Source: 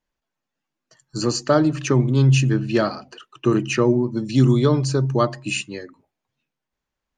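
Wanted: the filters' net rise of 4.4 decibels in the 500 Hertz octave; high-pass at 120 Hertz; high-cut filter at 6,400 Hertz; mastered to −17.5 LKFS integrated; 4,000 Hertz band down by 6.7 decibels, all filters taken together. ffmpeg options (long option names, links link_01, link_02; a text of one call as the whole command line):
ffmpeg -i in.wav -af "highpass=120,lowpass=6400,equalizer=frequency=500:width_type=o:gain=6,equalizer=frequency=4000:width_type=o:gain=-9,volume=1dB" out.wav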